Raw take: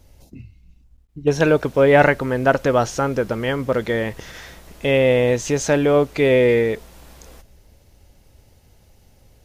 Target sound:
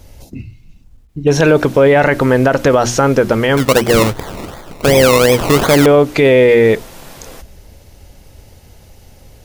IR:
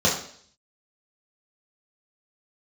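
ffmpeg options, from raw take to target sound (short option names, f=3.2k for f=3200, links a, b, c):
-filter_complex "[0:a]bandreject=f=60:t=h:w=6,bandreject=f=120:t=h:w=6,bandreject=f=180:t=h:w=6,bandreject=f=240:t=h:w=6,bandreject=f=300:t=h:w=6,bandreject=f=360:t=h:w=6,asettb=1/sr,asplit=3[a][b][c];[a]atrim=end=3.574[d];[b]atrim=start=3.57:end=5.86,asetpts=PTS-STARTPTS,afade=t=in:d=0.004:c=qsin,afade=t=out:st=2.286:d=0.004:c=qsin,acrusher=samples=22:mix=1:aa=0.000001:lfo=1:lforange=13.2:lforate=2.7[e];[c]atrim=start=5.856[f];[d][e]acrossfade=d=0.004:c1=hsin:c2=qsin[g];[g][f]acrossfade=d=0.004:c1=qsin:c2=hsin,alimiter=level_in=12.5dB:limit=-1dB:release=50:level=0:latency=1,volume=-1dB"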